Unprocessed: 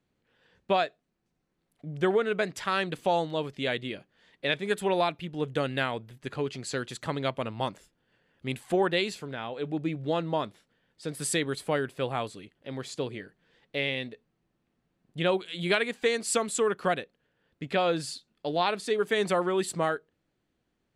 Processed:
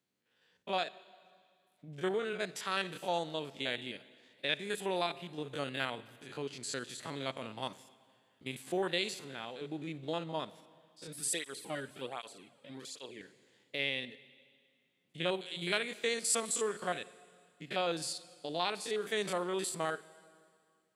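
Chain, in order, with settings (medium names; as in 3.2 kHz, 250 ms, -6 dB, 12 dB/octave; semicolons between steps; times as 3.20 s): spectrogram pixelated in time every 50 ms; high-pass 140 Hz 12 dB/octave; treble shelf 2.7 kHz +11 dB; reverberation RT60 2.1 s, pre-delay 43 ms, DRR 18 dB; 11.07–13.21 s: cancelling through-zero flanger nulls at 1.3 Hz, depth 3 ms; trim -8 dB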